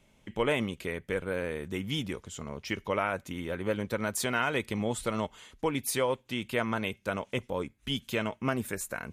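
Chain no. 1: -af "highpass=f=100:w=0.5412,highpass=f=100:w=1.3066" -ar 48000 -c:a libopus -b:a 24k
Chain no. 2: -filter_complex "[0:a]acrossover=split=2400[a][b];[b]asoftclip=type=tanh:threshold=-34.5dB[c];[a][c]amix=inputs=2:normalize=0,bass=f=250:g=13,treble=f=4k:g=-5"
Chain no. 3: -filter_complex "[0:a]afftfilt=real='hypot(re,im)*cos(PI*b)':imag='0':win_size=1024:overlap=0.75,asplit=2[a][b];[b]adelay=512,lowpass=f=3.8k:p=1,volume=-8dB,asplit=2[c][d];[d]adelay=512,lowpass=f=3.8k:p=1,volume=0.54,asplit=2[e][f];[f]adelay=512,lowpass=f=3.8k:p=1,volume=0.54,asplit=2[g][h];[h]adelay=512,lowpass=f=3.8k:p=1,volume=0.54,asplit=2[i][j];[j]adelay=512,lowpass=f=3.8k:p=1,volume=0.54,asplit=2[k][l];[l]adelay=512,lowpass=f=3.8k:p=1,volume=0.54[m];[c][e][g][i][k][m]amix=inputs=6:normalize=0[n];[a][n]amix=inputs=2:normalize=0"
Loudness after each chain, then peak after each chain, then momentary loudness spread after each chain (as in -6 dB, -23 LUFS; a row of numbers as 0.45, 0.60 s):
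-33.0, -28.5, -36.0 LUFS; -13.0, -11.5, -13.5 dBFS; 8, 6, 6 LU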